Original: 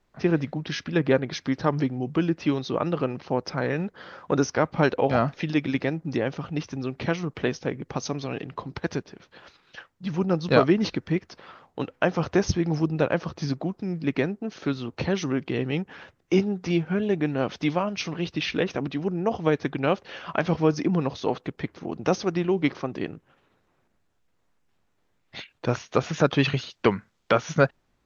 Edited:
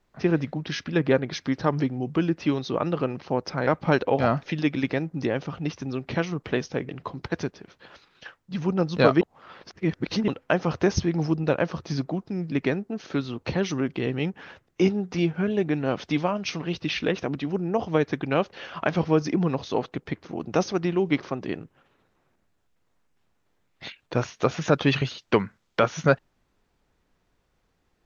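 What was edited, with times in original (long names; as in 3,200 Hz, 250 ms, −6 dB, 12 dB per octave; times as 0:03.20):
0:03.67–0:04.58: remove
0:07.80–0:08.41: remove
0:10.73–0:11.80: reverse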